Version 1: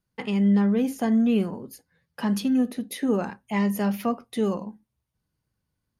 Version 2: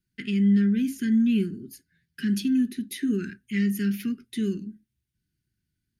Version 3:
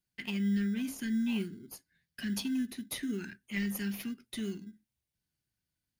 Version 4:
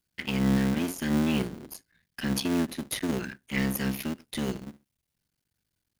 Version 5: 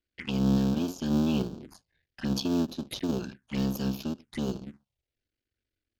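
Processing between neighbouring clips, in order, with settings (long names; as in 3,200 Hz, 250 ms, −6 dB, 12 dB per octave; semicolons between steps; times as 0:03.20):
Chebyshev band-stop filter 380–1,500 Hz, order 4
tilt shelving filter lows −5.5 dB, about 920 Hz; in parallel at −12 dB: sample-rate reduction 1,800 Hz, jitter 0%; on the sum: level −7 dB
sub-harmonics by changed cycles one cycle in 3, muted; level +7.5 dB
low-pass that shuts in the quiet parts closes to 2,900 Hz, open at −26 dBFS; phaser swept by the level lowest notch 160 Hz, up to 2,000 Hz, full sweep at −30 dBFS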